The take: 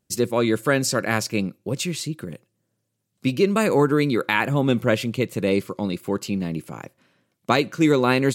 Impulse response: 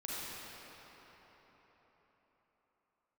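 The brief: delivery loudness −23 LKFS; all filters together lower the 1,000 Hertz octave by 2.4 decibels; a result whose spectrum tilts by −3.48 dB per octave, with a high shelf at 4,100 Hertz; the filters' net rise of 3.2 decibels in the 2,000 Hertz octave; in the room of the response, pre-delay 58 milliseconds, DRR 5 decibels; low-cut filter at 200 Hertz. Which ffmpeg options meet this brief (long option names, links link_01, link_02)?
-filter_complex "[0:a]highpass=200,equalizer=frequency=1000:width_type=o:gain=-5,equalizer=frequency=2000:width_type=o:gain=4,highshelf=frequency=4100:gain=6.5,asplit=2[link_01][link_02];[1:a]atrim=start_sample=2205,adelay=58[link_03];[link_02][link_03]afir=irnorm=-1:irlink=0,volume=-7.5dB[link_04];[link_01][link_04]amix=inputs=2:normalize=0,volume=-1.5dB"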